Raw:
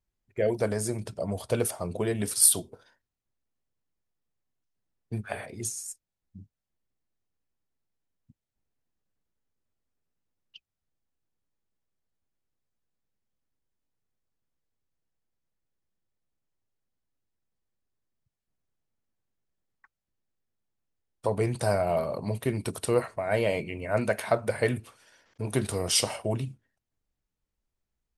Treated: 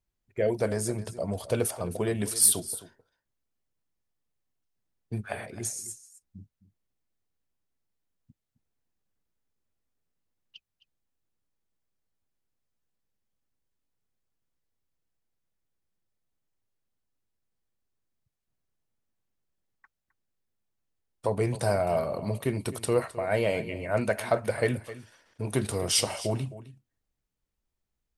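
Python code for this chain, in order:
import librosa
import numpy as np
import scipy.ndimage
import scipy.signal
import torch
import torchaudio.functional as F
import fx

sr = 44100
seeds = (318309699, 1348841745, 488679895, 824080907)

y = x + 10.0 ** (-16.0 / 20.0) * np.pad(x, (int(262 * sr / 1000.0), 0))[:len(x)]
y = 10.0 ** (-8.5 / 20.0) * np.tanh(y / 10.0 ** (-8.5 / 20.0))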